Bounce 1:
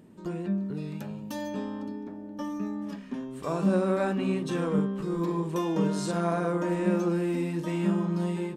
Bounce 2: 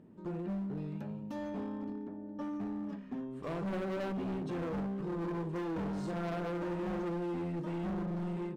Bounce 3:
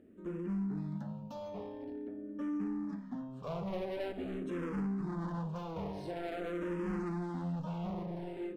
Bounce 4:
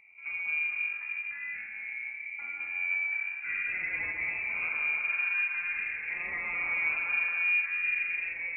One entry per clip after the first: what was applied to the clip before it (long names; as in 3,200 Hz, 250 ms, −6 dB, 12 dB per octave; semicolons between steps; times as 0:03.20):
low-pass filter 1,200 Hz 6 dB per octave; hard clipping −30.5 dBFS, distortion −7 dB; level −3.5 dB
convolution reverb, pre-delay 3 ms, DRR 12.5 dB; frequency shifter mixed with the dry sound −0.47 Hz; level +1 dB
reverb whose tail is shaped and stops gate 480 ms flat, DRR −0.5 dB; voice inversion scrambler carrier 2,600 Hz; level +1.5 dB